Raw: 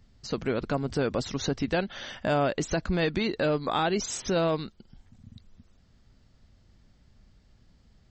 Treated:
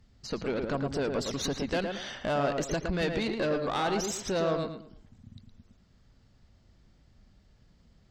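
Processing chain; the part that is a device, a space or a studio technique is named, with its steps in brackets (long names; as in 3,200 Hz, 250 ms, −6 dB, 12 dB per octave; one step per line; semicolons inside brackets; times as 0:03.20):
0:01.22–0:02.24: high-shelf EQ 5,000 Hz +6 dB
rockabilly slapback (tube saturation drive 23 dB, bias 0.45; tape delay 112 ms, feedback 33%, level −3 dB, low-pass 1,800 Hz)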